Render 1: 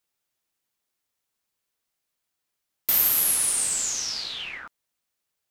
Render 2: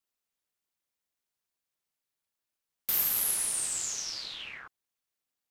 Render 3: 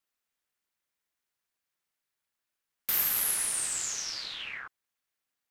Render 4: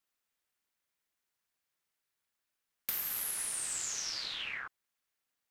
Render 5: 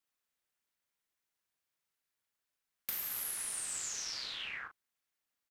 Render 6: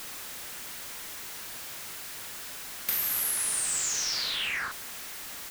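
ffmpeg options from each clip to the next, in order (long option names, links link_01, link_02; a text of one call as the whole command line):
ffmpeg -i in.wav -af "aeval=exprs='val(0)*sin(2*PI*130*n/s)':channel_layout=same,volume=-4dB" out.wav
ffmpeg -i in.wav -af "equalizer=frequency=1700:width_type=o:width=1.3:gain=5.5" out.wav
ffmpeg -i in.wav -af "acompressor=threshold=-32dB:ratio=10" out.wav
ffmpeg -i in.wav -filter_complex "[0:a]asplit=2[link_01][link_02];[link_02]adelay=38,volume=-8dB[link_03];[link_01][link_03]amix=inputs=2:normalize=0,volume=-3dB" out.wav
ffmpeg -i in.wav -af "aeval=exprs='val(0)+0.5*0.00944*sgn(val(0))':channel_layout=same,volume=7.5dB" out.wav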